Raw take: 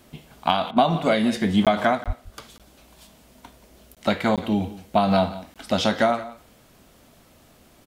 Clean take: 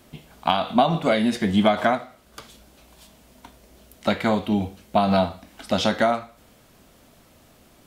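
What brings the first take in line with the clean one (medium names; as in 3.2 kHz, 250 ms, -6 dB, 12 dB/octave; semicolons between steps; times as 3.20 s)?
de-plosive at 2.06 s; interpolate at 1.65/2.04/2.58/3.95/4.36/5.54 s, 17 ms; interpolate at 0.71 s, 55 ms; inverse comb 177 ms -17 dB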